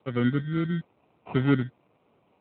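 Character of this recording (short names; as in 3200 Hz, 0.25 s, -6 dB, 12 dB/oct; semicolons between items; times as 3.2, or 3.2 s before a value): a quantiser's noise floor 10-bit, dither triangular; phasing stages 12, 0.89 Hz, lowest notch 660–3000 Hz; aliases and images of a low sample rate 1700 Hz, jitter 0%; AMR-NB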